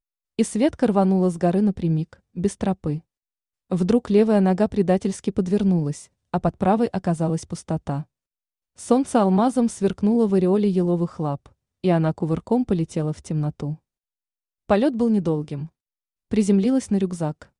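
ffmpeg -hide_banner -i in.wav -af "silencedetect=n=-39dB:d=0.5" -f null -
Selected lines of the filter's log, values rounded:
silence_start: 3.00
silence_end: 3.71 | silence_duration: 0.72
silence_start: 8.03
silence_end: 8.79 | silence_duration: 0.76
silence_start: 13.75
silence_end: 14.70 | silence_duration: 0.94
silence_start: 15.67
silence_end: 16.31 | silence_duration: 0.65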